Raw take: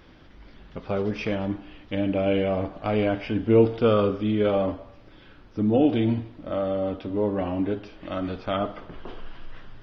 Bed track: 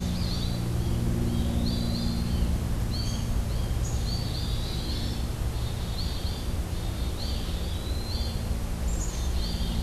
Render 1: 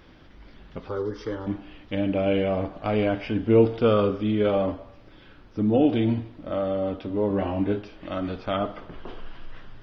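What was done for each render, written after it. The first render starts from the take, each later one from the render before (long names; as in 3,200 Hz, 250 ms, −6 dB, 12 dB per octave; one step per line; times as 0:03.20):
0:00.89–0:01.47: phaser with its sweep stopped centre 670 Hz, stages 6
0:07.28–0:07.82: double-tracking delay 20 ms −4 dB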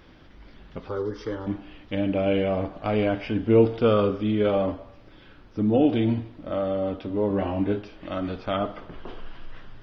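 no processing that can be heard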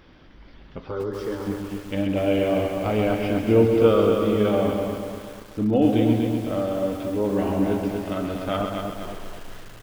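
repeating echo 132 ms, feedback 31%, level −7.5 dB
feedback echo at a low word length 244 ms, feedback 55%, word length 7 bits, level −5 dB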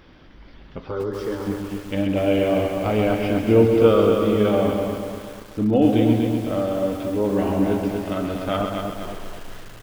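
level +2 dB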